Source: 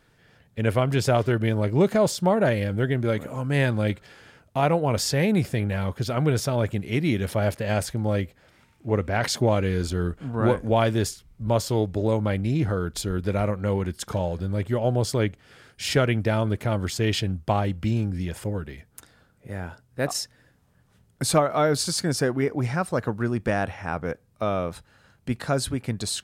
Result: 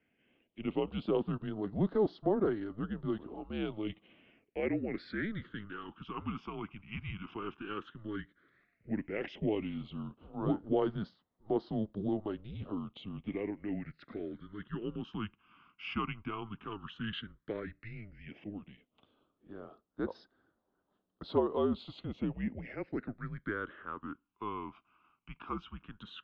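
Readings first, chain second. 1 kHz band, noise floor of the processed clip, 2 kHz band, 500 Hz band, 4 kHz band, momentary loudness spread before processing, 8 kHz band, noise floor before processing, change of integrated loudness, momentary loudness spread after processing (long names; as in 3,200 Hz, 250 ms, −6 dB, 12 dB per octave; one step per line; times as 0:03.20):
−14.0 dB, −81 dBFS, −13.5 dB, −12.5 dB, −16.5 dB, 9 LU, below −40 dB, −62 dBFS, −13.0 dB, 15 LU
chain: single-sideband voice off tune −210 Hz 390–3,400 Hz
all-pass phaser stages 8, 0.11 Hz, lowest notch 530–2,400 Hz
level −7.5 dB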